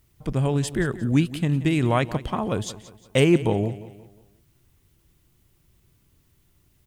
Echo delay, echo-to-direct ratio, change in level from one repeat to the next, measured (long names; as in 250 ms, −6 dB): 178 ms, −15.0 dB, −7.5 dB